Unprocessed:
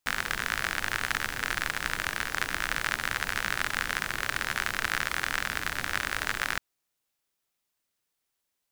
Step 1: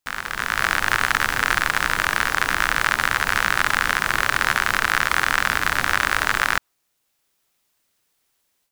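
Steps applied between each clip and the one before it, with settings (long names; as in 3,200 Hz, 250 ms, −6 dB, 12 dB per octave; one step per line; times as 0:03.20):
dynamic equaliser 1,100 Hz, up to +6 dB, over −44 dBFS, Q 1.2
brickwall limiter −11.5 dBFS, peak gain reduction 4.5 dB
automatic gain control gain up to 11.5 dB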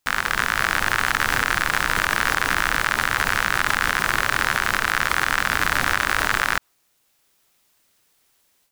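brickwall limiter −10.5 dBFS, peak gain reduction 8 dB
level +6 dB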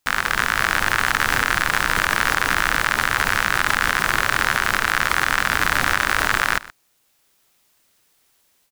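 single-tap delay 123 ms −19 dB
level +1.5 dB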